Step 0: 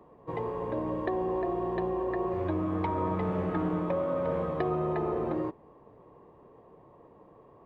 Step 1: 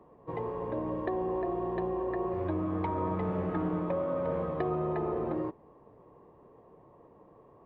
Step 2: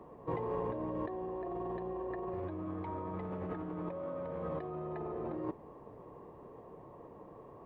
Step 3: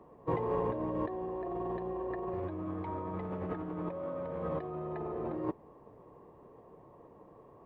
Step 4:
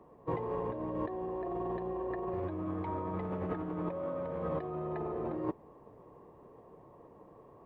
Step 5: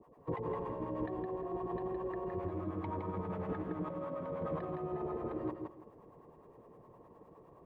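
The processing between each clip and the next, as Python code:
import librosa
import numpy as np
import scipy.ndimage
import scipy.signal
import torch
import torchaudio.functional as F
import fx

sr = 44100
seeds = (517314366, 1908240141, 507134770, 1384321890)

y1 = fx.high_shelf(x, sr, hz=3400.0, db=-7.5)
y1 = F.gain(torch.from_numpy(y1), -1.5).numpy()
y2 = fx.over_compress(y1, sr, threshold_db=-38.0, ratio=-1.0)
y2 = F.gain(torch.from_numpy(y2), -1.0).numpy()
y3 = fx.upward_expand(y2, sr, threshold_db=-51.0, expansion=1.5)
y3 = F.gain(torch.from_numpy(y3), 5.0).numpy()
y4 = fx.rider(y3, sr, range_db=10, speed_s=0.5)
y5 = fx.harmonic_tremolo(y4, sr, hz=9.7, depth_pct=100, crossover_hz=580.0)
y5 = fx.echo_feedback(y5, sr, ms=164, feedback_pct=22, wet_db=-5.0)
y5 = F.gain(torch.from_numpy(y5), 1.5).numpy()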